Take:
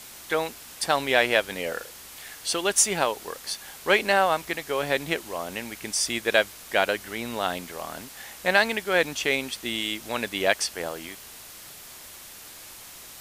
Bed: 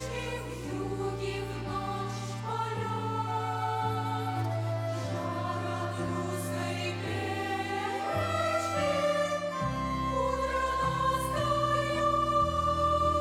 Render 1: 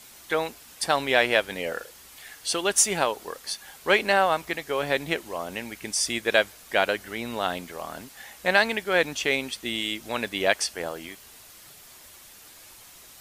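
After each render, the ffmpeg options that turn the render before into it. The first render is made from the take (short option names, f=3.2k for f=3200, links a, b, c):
-af "afftdn=nr=6:nf=-45"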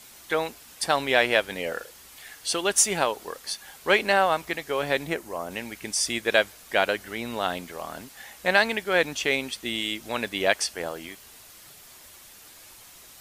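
-filter_complex "[0:a]asettb=1/sr,asplit=3[a][b][c];[a]atrim=end=5.074[d];[b]atrim=start=5.07:end=5.51,asetpts=PTS-STARTPTS,afade=t=in:d=0.004:c=qsin,afade=t=out:st=0.436:d=0.004:c=qsin,equalizer=f=3.3k:t=o:w=0.99:g=-8[e];[c]atrim=start=5.506[f];[d][e]acrossfade=d=0.004:c1=hsin:c2=qsin[g];[g][f]acrossfade=d=0.004:c1=qsin:c2=hsin"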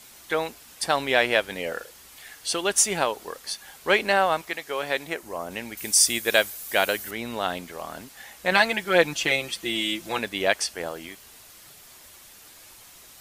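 -filter_complex "[0:a]asettb=1/sr,asplit=3[a][b][c];[a]atrim=end=4.414[d];[b]atrim=start=4.41:end=5.23,asetpts=PTS-STARTPTS,afade=t=in:d=0.004:c=qsin,afade=t=out:st=0.816:d=0.004:c=qsin,lowshelf=f=280:g=-11[e];[c]atrim=start=5.226[f];[d][e]acrossfade=d=0.004:c1=hsin:c2=qsin[g];[g][f]acrossfade=d=0.004:c1=qsin:c2=hsin,asettb=1/sr,asplit=3[h][i][j];[h]atrim=end=5.774[k];[i]atrim=start=5.77:end=7.11,asetpts=PTS-STARTPTS,afade=t=in:d=0.004:c=qsin,afade=t=out:st=1.336:d=0.004:c=qsin,aemphasis=mode=production:type=50fm[l];[j]atrim=start=7.106[m];[k][l]acrossfade=d=0.004:c1=hsin:c2=qsin[n];[n][m]acrossfade=d=0.004:c1=qsin:c2=hsin,asettb=1/sr,asplit=3[o][p][q];[o]atrim=end=8.514[r];[p]atrim=start=8.51:end=10.19,asetpts=PTS-STARTPTS,afade=t=in:d=0.004:c=qsin,afade=t=out:st=1.676:d=0.004:c=qsin,aecho=1:1:5.9:0.86,atrim=end_sample=74088[s];[q]atrim=start=10.186[t];[r][s]acrossfade=d=0.004:c1=hsin:c2=qsin[u];[u][t]acrossfade=d=0.004:c1=qsin:c2=hsin"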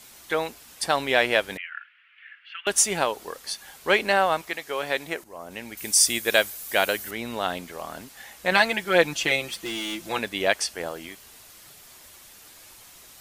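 -filter_complex "[0:a]asettb=1/sr,asplit=3[a][b][c];[a]atrim=end=1.574[d];[b]atrim=start=1.57:end=2.67,asetpts=PTS-STARTPTS,afade=t=in:d=0.004:c=qsin,afade=t=out:st=1.096:d=0.004:c=qsin,asuperpass=centerf=2000:order=8:qfactor=1.3[e];[c]atrim=start=2.666[f];[d][e]acrossfade=d=0.004:c1=hsin:c2=qsin[g];[g][f]acrossfade=d=0.004:c1=qsin:c2=hsin,asettb=1/sr,asplit=3[h][i][j];[h]atrim=end=9.484[k];[i]atrim=start=9.48:end=10.06,asetpts=PTS-STARTPTS,afade=t=in:d=0.004:c=qsin,afade=t=out:st=0.576:d=0.004:c=qsin,volume=28dB,asoftclip=hard,volume=-28dB[l];[j]atrim=start=10.056[m];[k][l]acrossfade=d=0.004:c1=hsin:c2=qsin[n];[n][m]acrossfade=d=0.004:c1=qsin:c2=hsin,asplit=2[o][p];[o]atrim=end=5.24,asetpts=PTS-STARTPTS,afade=t=out:st=5.236:d=0.004:c=hsin:silence=0.251189[q];[p]atrim=start=5.24,asetpts=PTS-STARTPTS,afade=t=in:d=0.88:c=qsin:silence=0.251189[r];[q][r]concat=n=2:v=0:a=1"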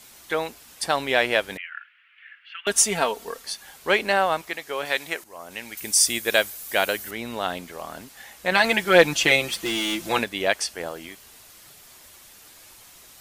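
-filter_complex "[0:a]asettb=1/sr,asplit=3[a][b][c];[a]atrim=end=2.644[d];[b]atrim=start=2.64:end=3.43,asetpts=PTS-STARTPTS,afade=t=in:d=0.004:c=qsin,afade=t=out:st=0.786:d=0.004:c=qsin,aecho=1:1:4.4:0.65,atrim=end_sample=34839[e];[c]atrim=start=3.426[f];[d][e]acrossfade=d=0.004:c1=hsin:c2=qsin[g];[g][f]acrossfade=d=0.004:c1=qsin:c2=hsin,asettb=1/sr,asplit=3[h][i][j];[h]atrim=end=4.854[k];[i]atrim=start=4.85:end=5.8,asetpts=PTS-STARTPTS,afade=t=in:d=0.004:c=qsin,afade=t=out:st=0.946:d=0.004:c=qsin,tiltshelf=f=850:g=-4.5[l];[j]atrim=start=5.796[m];[k][l]acrossfade=d=0.004:c1=hsin:c2=qsin[n];[n][m]acrossfade=d=0.004:c1=qsin:c2=hsin,asettb=1/sr,asplit=3[o][p][q];[o]atrim=end=8.644[r];[p]atrim=start=8.64:end=10.24,asetpts=PTS-STARTPTS,afade=t=in:d=0.004:c=qsin,afade=t=out:st=1.596:d=0.004:c=qsin,acontrast=31[s];[q]atrim=start=10.236[t];[r][s]acrossfade=d=0.004:c1=hsin:c2=qsin[u];[u][t]acrossfade=d=0.004:c1=qsin:c2=hsin"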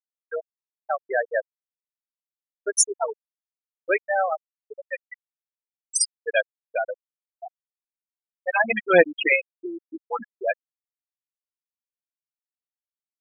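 -af "afftfilt=real='re*gte(hypot(re,im),0.398)':imag='im*gte(hypot(re,im),0.398)':win_size=1024:overlap=0.75,highshelf=f=4.9k:g=7.5"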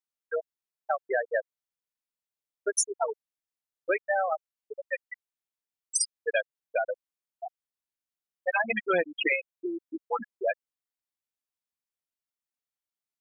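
-af "acompressor=threshold=-23dB:ratio=6"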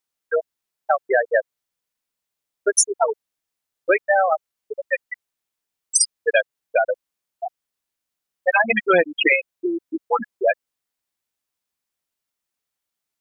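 -af "volume=9.5dB"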